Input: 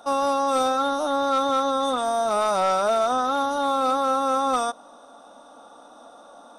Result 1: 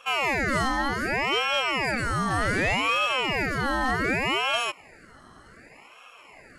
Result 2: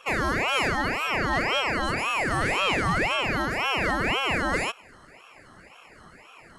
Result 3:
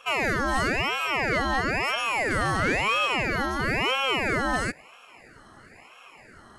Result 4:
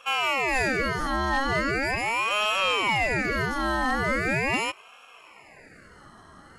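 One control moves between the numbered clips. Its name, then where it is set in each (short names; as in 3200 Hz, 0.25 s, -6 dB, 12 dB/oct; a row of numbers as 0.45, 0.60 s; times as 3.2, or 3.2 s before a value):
ring modulator with a swept carrier, at: 0.66, 1.9, 1, 0.4 Hz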